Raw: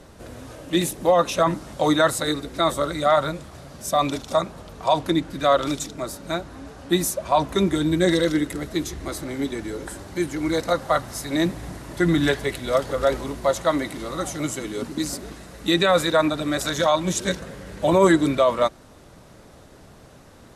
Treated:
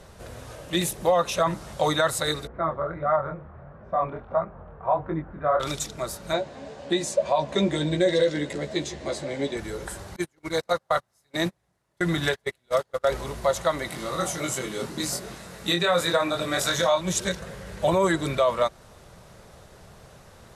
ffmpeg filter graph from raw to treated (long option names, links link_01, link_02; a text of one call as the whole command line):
ffmpeg -i in.wav -filter_complex "[0:a]asettb=1/sr,asplit=3[link_01][link_02][link_03];[link_01]atrim=end=2.474[link_04];[link_02]atrim=start=2.47:end=5.6,asetpts=PTS-STARTPTS,afade=type=in:duration=0.004:curve=qsin,afade=type=out:start_time=3.126:duration=0.004:curve=qsin,lowpass=frequency=1600:width=0.5412,lowpass=frequency=1600:width=1.3066,flanger=delay=19:depth=7.7:speed=1.5[link_05];[link_03]atrim=start=5.596[link_06];[link_04][link_05]acrossfade=duration=0.004:curve1=hsin:curve2=qsin[link_07];[link_07][link_06]acrossfade=duration=0.004:curve1=qsin:curve2=hsin,asettb=1/sr,asplit=3[link_08][link_09][link_10];[link_08]atrim=end=6.334[link_11];[link_09]atrim=start=6.33:end=9.57,asetpts=PTS-STARTPTS,afade=type=in:duration=0.004:curve=qsin,afade=type=out:start_time=3.236:duration=0.004:curve=qsin,highpass=140,equalizer=frequency=260:width_type=q:width=4:gain=6,equalizer=frequency=560:width_type=q:width=4:gain=8,equalizer=frequency=1300:width_type=q:width=4:gain=-9,equalizer=frequency=5800:width_type=q:width=4:gain=-4,lowpass=frequency=7500:width=0.5412,lowpass=frequency=7500:width=1.3066,asplit=2[link_12][link_13];[link_13]adelay=14,volume=-5.5dB[link_14];[link_12][link_14]amix=inputs=2:normalize=0,atrim=end_sample=142884[link_15];[link_10]atrim=start=9.566[link_16];[link_11][link_15]acrossfade=duration=0.004:curve1=hsin:curve2=qsin[link_17];[link_17][link_16]acrossfade=duration=0.004:curve1=qsin:curve2=hsin,asettb=1/sr,asplit=3[link_18][link_19][link_20];[link_18]atrim=end=10.164[link_21];[link_19]atrim=start=10.16:end=13.09,asetpts=PTS-STARTPTS,afade=type=in:duration=0.004:curve=qsin,afade=type=out:start_time=2.926:duration=0.004:curve=qsin,highpass=frequency=130:poles=1,agate=range=-34dB:threshold=-24dB:ratio=16:release=100:detection=peak[link_22];[link_20]atrim=start=13.086[link_23];[link_21][link_22]acrossfade=duration=0.004:curve1=hsin:curve2=qsin[link_24];[link_24][link_23]acrossfade=duration=0.004:curve1=qsin:curve2=hsin,asettb=1/sr,asplit=3[link_25][link_26][link_27];[link_25]atrim=end=13.894[link_28];[link_26]atrim=start=13.89:end=17.01,asetpts=PTS-STARTPTS,afade=type=in:duration=0.004:curve=qsin,afade=type=out:start_time=3.116:duration=0.004:curve=qsin,highpass=84,asplit=2[link_29][link_30];[link_30]adelay=23,volume=-3dB[link_31];[link_29][link_31]amix=inputs=2:normalize=0,atrim=end_sample=137592[link_32];[link_27]atrim=start=17.006[link_33];[link_28][link_32]acrossfade=duration=0.004:curve1=hsin:curve2=qsin[link_34];[link_34][link_33]acrossfade=duration=0.004:curve1=qsin:curve2=hsin,equalizer=frequency=280:width=3.3:gain=-13,alimiter=limit=-12dB:level=0:latency=1:release=200" out.wav